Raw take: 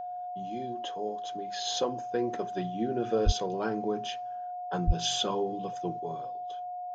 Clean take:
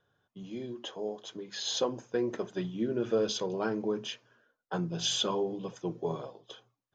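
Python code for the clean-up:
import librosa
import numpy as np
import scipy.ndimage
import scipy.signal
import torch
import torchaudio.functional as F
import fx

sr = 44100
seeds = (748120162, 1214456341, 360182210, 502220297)

y = fx.notch(x, sr, hz=720.0, q=30.0)
y = fx.fix_deplosive(y, sr, at_s=(3.25, 4.86))
y = fx.fix_level(y, sr, at_s=5.99, step_db=6.0)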